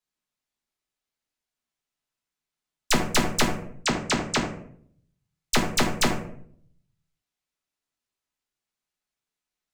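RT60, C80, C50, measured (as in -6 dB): 0.60 s, 10.5 dB, 7.0 dB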